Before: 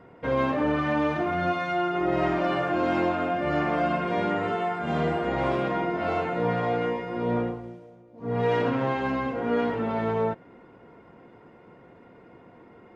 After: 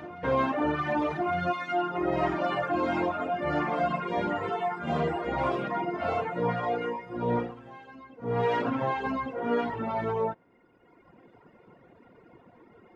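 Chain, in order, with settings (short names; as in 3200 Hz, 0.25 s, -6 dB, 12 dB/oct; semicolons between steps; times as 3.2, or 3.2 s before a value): reverse echo 1.162 s -14 dB; reverb removal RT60 1.6 s; dynamic EQ 940 Hz, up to +4 dB, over -44 dBFS, Q 1.9; gain -1 dB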